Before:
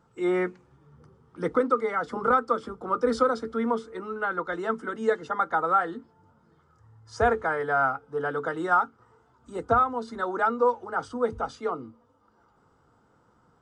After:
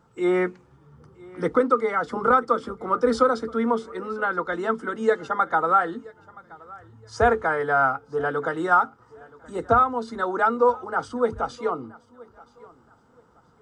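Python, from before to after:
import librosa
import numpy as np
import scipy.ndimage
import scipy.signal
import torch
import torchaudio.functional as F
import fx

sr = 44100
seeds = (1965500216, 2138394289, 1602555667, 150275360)

y = fx.echo_feedback(x, sr, ms=974, feedback_pct=28, wet_db=-23.0)
y = y * 10.0 ** (3.5 / 20.0)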